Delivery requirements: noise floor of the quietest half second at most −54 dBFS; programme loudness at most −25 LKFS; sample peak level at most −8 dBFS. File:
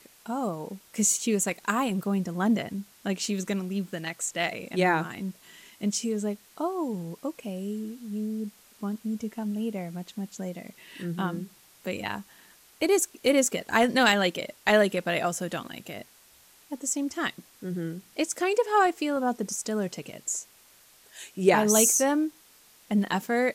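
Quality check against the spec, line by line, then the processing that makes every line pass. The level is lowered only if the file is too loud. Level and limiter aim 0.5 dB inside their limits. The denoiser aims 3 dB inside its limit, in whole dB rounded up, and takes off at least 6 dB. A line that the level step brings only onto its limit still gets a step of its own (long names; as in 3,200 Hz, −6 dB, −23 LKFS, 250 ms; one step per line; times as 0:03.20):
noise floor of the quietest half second −57 dBFS: in spec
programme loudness −27.5 LKFS: in spec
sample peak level −6.5 dBFS: out of spec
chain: brickwall limiter −8.5 dBFS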